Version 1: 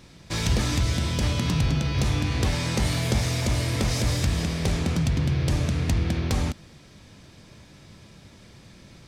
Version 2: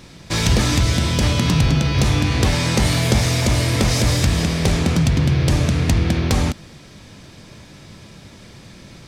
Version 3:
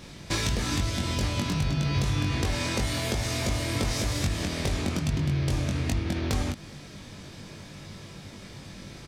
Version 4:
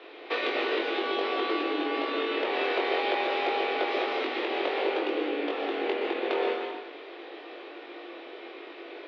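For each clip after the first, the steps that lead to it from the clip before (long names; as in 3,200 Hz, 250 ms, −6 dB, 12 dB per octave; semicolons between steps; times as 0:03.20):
parametric band 61 Hz −2.5 dB 1.5 octaves; level +8 dB
downward compressor, threshold −22 dBFS, peak gain reduction 10.5 dB; double-tracking delay 21 ms −3.5 dB; level −3.5 dB
single-sideband voice off tune +150 Hz 200–3,300 Hz; dense smooth reverb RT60 1 s, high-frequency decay 0.95×, pre-delay 110 ms, DRR 1 dB; level +1.5 dB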